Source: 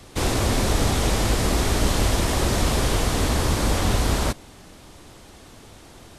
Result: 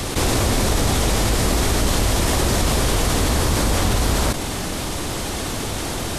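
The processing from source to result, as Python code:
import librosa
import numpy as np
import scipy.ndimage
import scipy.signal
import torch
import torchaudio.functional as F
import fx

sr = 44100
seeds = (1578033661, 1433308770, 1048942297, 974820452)

y = fx.high_shelf(x, sr, hz=6800.0, db=4.0)
y = fx.env_flatten(y, sr, amount_pct=70)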